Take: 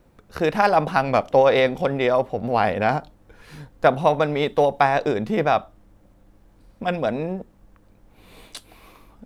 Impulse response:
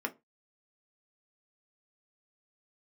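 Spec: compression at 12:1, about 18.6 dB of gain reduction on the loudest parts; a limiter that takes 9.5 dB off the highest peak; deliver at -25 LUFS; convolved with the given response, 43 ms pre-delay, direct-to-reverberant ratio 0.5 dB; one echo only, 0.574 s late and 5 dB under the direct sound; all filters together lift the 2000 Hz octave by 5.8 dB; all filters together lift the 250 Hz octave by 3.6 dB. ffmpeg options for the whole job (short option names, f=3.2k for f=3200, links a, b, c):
-filter_complex "[0:a]equalizer=f=250:t=o:g=4.5,equalizer=f=2k:t=o:g=7.5,acompressor=threshold=-29dB:ratio=12,alimiter=level_in=0.5dB:limit=-24dB:level=0:latency=1,volume=-0.5dB,aecho=1:1:574:0.562,asplit=2[a][b];[1:a]atrim=start_sample=2205,adelay=43[c];[b][c]afir=irnorm=-1:irlink=0,volume=-4.5dB[d];[a][d]amix=inputs=2:normalize=0,volume=8.5dB"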